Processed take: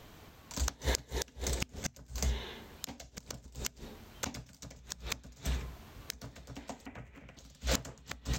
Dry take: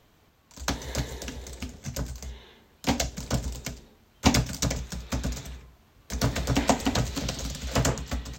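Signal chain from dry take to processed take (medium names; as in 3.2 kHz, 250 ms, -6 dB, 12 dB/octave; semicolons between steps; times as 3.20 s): inverted gate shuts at -24 dBFS, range -29 dB; 6.86–7.37 s: resonant high shelf 3.1 kHz -11 dB, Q 3; trim +7 dB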